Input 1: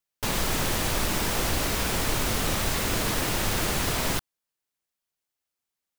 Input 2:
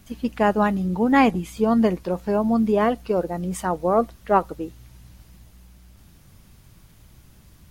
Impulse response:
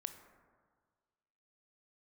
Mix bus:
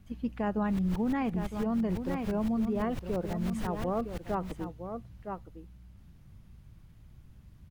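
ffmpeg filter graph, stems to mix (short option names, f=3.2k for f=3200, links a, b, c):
-filter_complex "[0:a]aeval=exprs='val(0)*pow(10,-32*if(lt(mod(-5.9*n/s,1),2*abs(-5.9)/1000),1-mod(-5.9*n/s,1)/(2*abs(-5.9)/1000),(mod(-5.9*n/s,1)-2*abs(-5.9)/1000)/(1-2*abs(-5.9)/1000))/20)':c=same,adelay=450,volume=-1.5dB[a];[1:a]volume=-11dB,asplit=3[b][c][d];[c]volume=-10.5dB[e];[d]apad=whole_len=283969[f];[a][f]sidechaincompress=threshold=-37dB:ratio=12:attack=16:release=828[g];[e]aecho=0:1:960:1[h];[g][b][h]amix=inputs=3:normalize=0,bass=f=250:g=9,treble=f=4k:g=-8,alimiter=limit=-23dB:level=0:latency=1:release=51"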